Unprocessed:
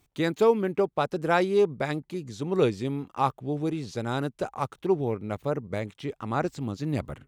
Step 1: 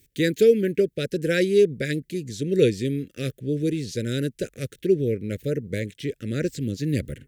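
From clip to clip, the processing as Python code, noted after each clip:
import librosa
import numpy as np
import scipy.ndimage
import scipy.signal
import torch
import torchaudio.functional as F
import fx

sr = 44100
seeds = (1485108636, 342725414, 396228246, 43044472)

y = scipy.signal.sosfilt(scipy.signal.ellip(3, 1.0, 60, [510.0, 1700.0], 'bandstop', fs=sr, output='sos'), x)
y = fx.high_shelf(y, sr, hz=7800.0, db=9.0)
y = y * librosa.db_to_amplitude(5.0)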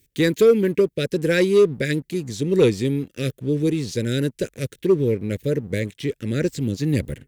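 y = fx.leveller(x, sr, passes=1)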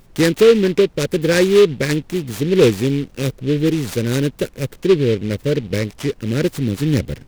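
y = fx.dmg_noise_colour(x, sr, seeds[0], colour='brown', level_db=-49.0)
y = fx.noise_mod_delay(y, sr, seeds[1], noise_hz=2600.0, depth_ms=0.052)
y = y * librosa.db_to_amplitude(4.0)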